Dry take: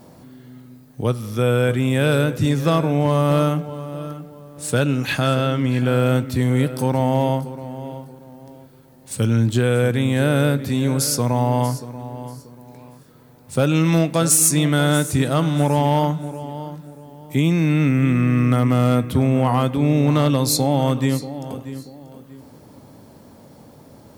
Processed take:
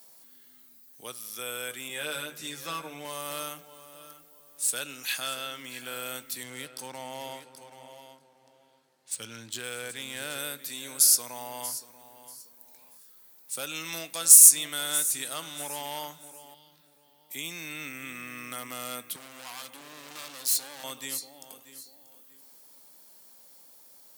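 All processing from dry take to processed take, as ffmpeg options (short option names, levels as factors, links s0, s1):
-filter_complex "[0:a]asettb=1/sr,asplit=3[s0][s1][s2];[s0]atrim=end=1.884[s3];[s1]atrim=start=1.88:end=3.05,asetpts=PTS-STARTPTS,afade=t=in:d=0.004:c=qsin,afade=t=out:st=1.166:d=0.004:c=qsin,highshelf=f=5000:g=-9,bandreject=f=50:t=h:w=6,bandreject=f=100:t=h:w=6,bandreject=f=150:t=h:w=6,bandreject=f=200:t=h:w=6,asplit=2[s4][s5];[s5]adelay=13,volume=0.708[s6];[s4][s6]amix=inputs=2:normalize=0,atrim=end_sample=51597[s7];[s2]atrim=start=3.046[s8];[s3][s7]acrossfade=d=0.004:c1=hsin:c2=qsin[s9];[s9][s8]acrossfade=d=0.004:c1=qsin:c2=hsin,asettb=1/sr,asplit=3[s10][s11][s12];[s10]atrim=end=6.434[s13];[s11]atrim=start=6.43:end=10.39,asetpts=PTS-STARTPTS,afade=t=in:d=0.004:c=qsin,afade=t=out:st=3.956:d=0.004:c=qsin,equalizer=f=100:t=o:w=0.52:g=8,adynamicsmooth=sensitivity=6:basefreq=4200,aecho=1:1:779:0.282,atrim=end_sample=174636[s14];[s12]atrim=start=10.386[s15];[s13][s14]acrossfade=d=0.004:c1=hsin:c2=qsin[s16];[s16][s15]acrossfade=d=0.004:c1=qsin:c2=hsin,asettb=1/sr,asplit=3[s17][s18][s19];[s17]atrim=end=16.544[s20];[s18]atrim=start=16.54:end=17.31,asetpts=PTS-STARTPTS,afade=t=in:d=0.004:c=qsin,afade=t=out:st=0.766:d=0.004:c=qsin,highshelf=f=5400:t=q:w=1.5:g=-9.5,acrossover=split=230|3000[s21][s22][s23];[s22]acompressor=threshold=0.00794:ratio=4:attack=3.2:release=140:knee=2.83:detection=peak[s24];[s21][s24][s23]amix=inputs=3:normalize=0[s25];[s19]atrim=start=17.306[s26];[s20][s25]acrossfade=d=0.004:c1=hsin:c2=qsin[s27];[s27][s26]acrossfade=d=0.004:c1=qsin:c2=hsin,asettb=1/sr,asplit=3[s28][s29][s30];[s28]atrim=end=19.164[s31];[s29]atrim=start=19.16:end=20.84,asetpts=PTS-STARTPTS,afade=t=in:d=0.004:c=qsin,afade=t=out:st=1.676:d=0.004:c=qsin,highpass=f=150:p=1,equalizer=f=14000:t=o:w=0.29:g=-3,asoftclip=type=hard:threshold=0.0631[s32];[s30]atrim=start=20.836[s33];[s31][s32]acrossfade=d=0.004:c1=hsin:c2=qsin[s34];[s34][s33]acrossfade=d=0.004:c1=qsin:c2=hsin,highpass=140,aderivative,volume=1.19"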